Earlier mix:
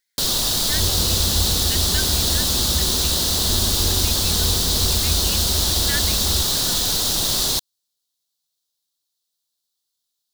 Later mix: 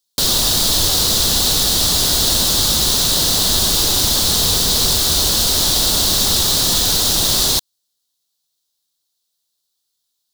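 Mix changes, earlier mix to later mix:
speech: muted
first sound +5.0 dB
second sound −7.5 dB

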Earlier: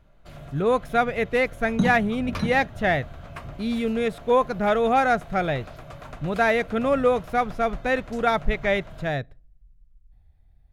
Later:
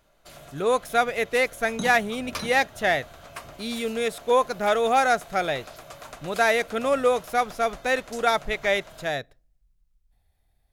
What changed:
second sound −3.0 dB
master: add bass and treble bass −12 dB, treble +12 dB

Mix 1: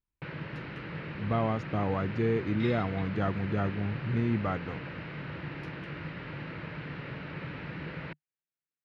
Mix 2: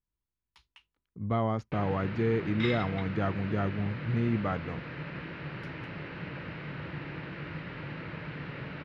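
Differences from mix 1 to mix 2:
first sound: entry +1.50 s
second sound +7.0 dB

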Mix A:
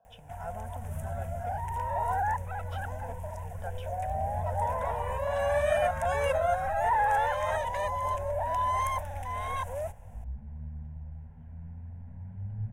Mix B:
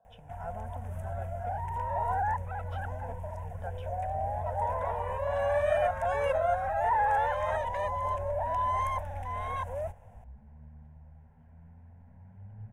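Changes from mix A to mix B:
second sound: add low-shelf EQ 270 Hz −11.5 dB
master: add high-shelf EQ 3,500 Hz −11.5 dB

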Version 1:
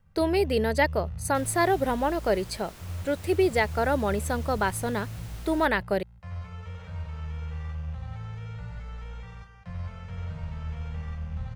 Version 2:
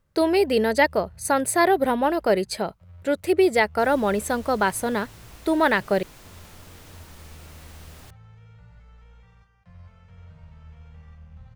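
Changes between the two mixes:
speech +4.5 dB
first sound −11.5 dB
second sound: entry +2.45 s

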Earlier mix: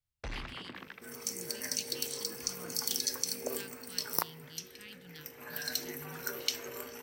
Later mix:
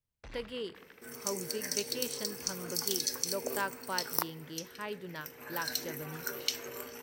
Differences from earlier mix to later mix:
speech: remove Chebyshev band-stop filter 120–3,200 Hz, order 2
first sound −9.0 dB

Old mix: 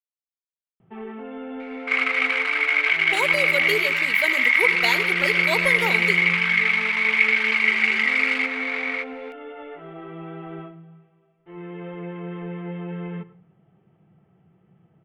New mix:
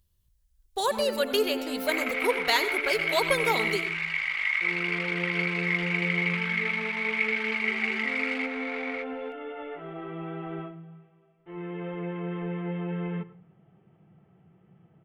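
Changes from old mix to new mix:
speech: entry −2.35 s
second sound −9.0 dB

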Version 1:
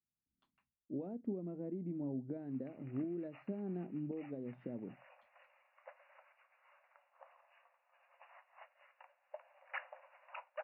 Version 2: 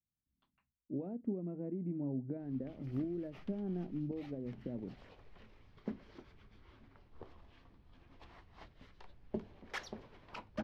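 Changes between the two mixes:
background: remove linear-phase brick-wall band-pass 510–2,900 Hz
master: add low-shelf EQ 120 Hz +11 dB

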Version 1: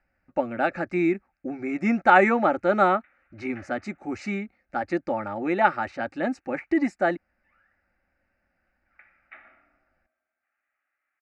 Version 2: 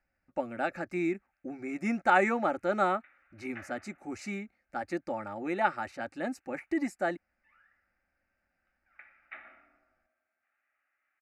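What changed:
speech −8.0 dB
master: remove high-frequency loss of the air 120 metres

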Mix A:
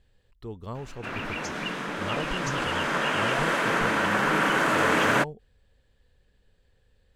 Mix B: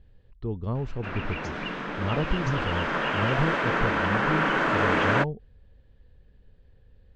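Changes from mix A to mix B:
speech: add low-shelf EQ 450 Hz +10 dB
master: add high-frequency loss of the air 160 metres

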